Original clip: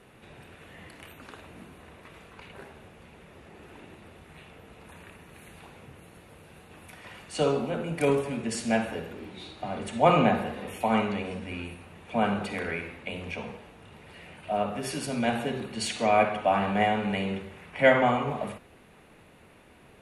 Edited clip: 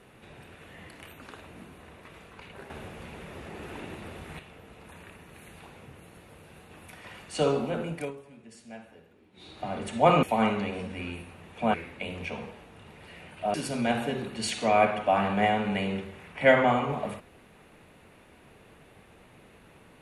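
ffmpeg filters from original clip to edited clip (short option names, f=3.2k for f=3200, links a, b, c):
-filter_complex "[0:a]asplit=8[a][b][c][d][e][f][g][h];[a]atrim=end=2.702[i];[b]atrim=start=2.698:end=4.392,asetpts=PTS-STARTPTS,volume=8dB[j];[c]atrim=start=4.388:end=8.12,asetpts=PTS-STARTPTS,afade=t=out:st=3.452:d=0.28:silence=0.112202[k];[d]atrim=start=8.12:end=9.32,asetpts=PTS-STARTPTS,volume=-19dB[l];[e]atrim=start=9.32:end=10.232,asetpts=PTS-STARTPTS,afade=t=in:d=0.28:silence=0.112202[m];[f]atrim=start=10.748:end=12.262[n];[g]atrim=start=12.798:end=14.602[o];[h]atrim=start=14.918[p];[i][j]acrossfade=d=0.004:c1=hsin:c2=hsin[q];[k][l][m]concat=n=3:v=0:a=1[r];[q][r]acrossfade=d=0.004:c1=hsin:c2=hsin[s];[s][n]acrossfade=d=0.004:c1=hsin:c2=hsin[t];[t][o]acrossfade=d=0.004:c1=hsin:c2=hsin[u];[u][p]acrossfade=d=0.004:c1=hsin:c2=hsin"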